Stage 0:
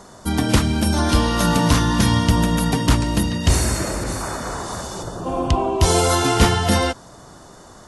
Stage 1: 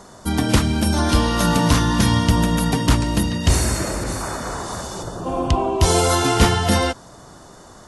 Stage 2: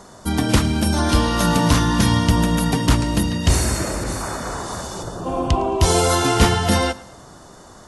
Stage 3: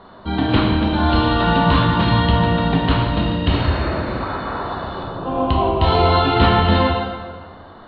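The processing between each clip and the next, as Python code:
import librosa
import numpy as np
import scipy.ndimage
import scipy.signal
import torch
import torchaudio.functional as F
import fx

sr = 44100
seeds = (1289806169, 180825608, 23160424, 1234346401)

y1 = x
y2 = fx.echo_feedback(y1, sr, ms=109, feedback_pct=45, wet_db=-21.5)
y3 = scipy.signal.sosfilt(scipy.signal.cheby1(6, 3, 4200.0, 'lowpass', fs=sr, output='sos'), y2)
y3 = fx.rev_plate(y3, sr, seeds[0], rt60_s=1.5, hf_ratio=0.75, predelay_ms=0, drr_db=-2.0)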